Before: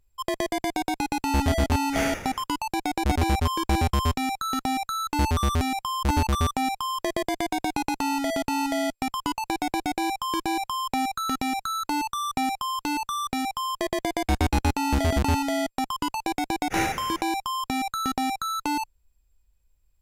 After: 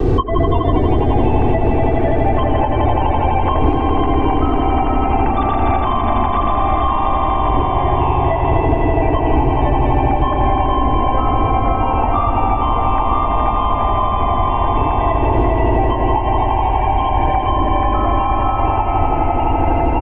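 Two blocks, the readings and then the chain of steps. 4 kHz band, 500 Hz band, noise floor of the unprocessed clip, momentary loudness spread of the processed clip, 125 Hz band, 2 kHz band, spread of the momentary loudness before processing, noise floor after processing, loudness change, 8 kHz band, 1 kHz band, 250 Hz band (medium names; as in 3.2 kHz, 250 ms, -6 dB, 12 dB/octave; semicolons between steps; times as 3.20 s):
-2.0 dB, +13.5 dB, -70 dBFS, 1 LU, +12.5 dB, +2.5 dB, 5 LU, -17 dBFS, +10.0 dB, under -30 dB, +11.5 dB, +8.0 dB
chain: formants replaced by sine waves; wind noise 390 Hz -37 dBFS; echo with a slow build-up 83 ms, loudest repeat 5, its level -6.5 dB; vibrato 0.61 Hz 13 cents; compression, threshold -29 dBFS, peak gain reduction 16 dB; bass shelf 360 Hz +9.5 dB; comb 2.6 ms, depth 97%; ever faster or slower copies 336 ms, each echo -2 st, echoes 3, each echo -6 dB; tilt shelf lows +6.5 dB, about 1.3 kHz; three bands compressed up and down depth 100%; trim +5.5 dB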